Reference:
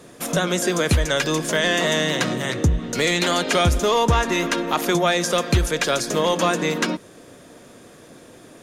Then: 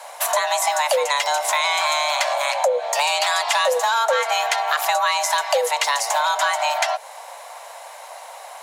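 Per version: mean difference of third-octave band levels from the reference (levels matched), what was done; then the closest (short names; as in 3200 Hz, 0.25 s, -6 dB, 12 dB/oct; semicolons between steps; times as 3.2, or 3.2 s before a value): 14.5 dB: high shelf 11000 Hz +4 dB; compressor 3:1, threshold -26 dBFS, peak gain reduction 9.5 dB; frequency shift +440 Hz; gain +7 dB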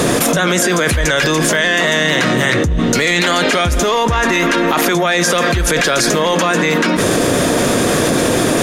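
7.5 dB: dynamic EQ 1800 Hz, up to +6 dB, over -35 dBFS, Q 1.2; limiter -19 dBFS, peak gain reduction 13.5 dB; fast leveller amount 100%; gain +8 dB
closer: second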